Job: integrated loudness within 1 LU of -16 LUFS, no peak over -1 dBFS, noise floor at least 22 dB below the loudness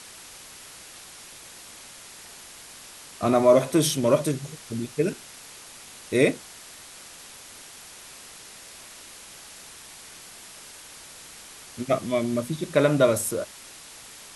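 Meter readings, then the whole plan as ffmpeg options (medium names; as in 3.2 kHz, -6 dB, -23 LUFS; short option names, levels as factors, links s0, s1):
noise floor -45 dBFS; noise floor target -46 dBFS; loudness -23.5 LUFS; peak level -5.5 dBFS; loudness target -16.0 LUFS
-> -af "afftdn=nr=6:nf=-45"
-af "volume=2.37,alimiter=limit=0.891:level=0:latency=1"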